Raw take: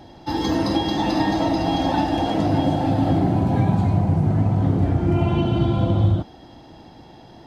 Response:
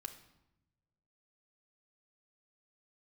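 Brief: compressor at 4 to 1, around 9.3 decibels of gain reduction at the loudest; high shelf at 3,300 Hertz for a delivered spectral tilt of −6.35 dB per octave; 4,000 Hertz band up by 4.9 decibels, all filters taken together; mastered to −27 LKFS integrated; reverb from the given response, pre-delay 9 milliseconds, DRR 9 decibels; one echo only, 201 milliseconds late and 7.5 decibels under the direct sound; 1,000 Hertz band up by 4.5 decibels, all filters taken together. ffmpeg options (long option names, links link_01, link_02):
-filter_complex "[0:a]equalizer=frequency=1000:width_type=o:gain=6,highshelf=frequency=3300:gain=-4.5,equalizer=frequency=4000:width_type=o:gain=9,acompressor=threshold=-25dB:ratio=4,aecho=1:1:201:0.422,asplit=2[link_01][link_02];[1:a]atrim=start_sample=2205,adelay=9[link_03];[link_02][link_03]afir=irnorm=-1:irlink=0,volume=-5.5dB[link_04];[link_01][link_04]amix=inputs=2:normalize=0,volume=-1dB"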